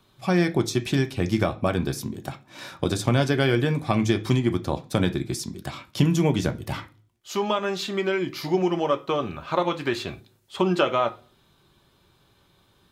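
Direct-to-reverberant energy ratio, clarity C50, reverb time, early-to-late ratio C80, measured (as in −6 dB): 6.5 dB, 18.0 dB, 0.40 s, 24.0 dB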